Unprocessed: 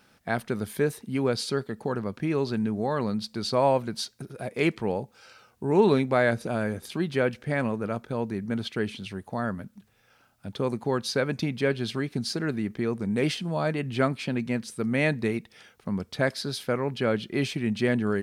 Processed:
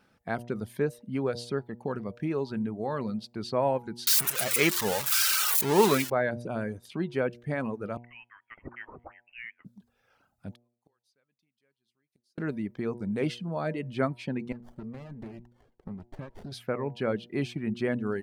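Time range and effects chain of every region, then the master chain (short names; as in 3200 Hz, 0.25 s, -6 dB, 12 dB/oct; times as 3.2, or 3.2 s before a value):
4.07–6.1 switching spikes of -14.5 dBFS + EQ curve 290 Hz 0 dB, 790 Hz +5 dB, 1200 Hz +10 dB
7.97–9.65 HPF 1000 Hz 24 dB/oct + inverted band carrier 3500 Hz
10.55–12.38 pre-emphasis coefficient 0.9 + flipped gate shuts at -38 dBFS, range -29 dB
14.52–16.52 compressor 12:1, threshold -31 dBFS + notch comb 490 Hz + running maximum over 33 samples
whole clip: reverb removal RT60 0.65 s; high shelf 2500 Hz -8.5 dB; de-hum 119.5 Hz, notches 8; gain -2.5 dB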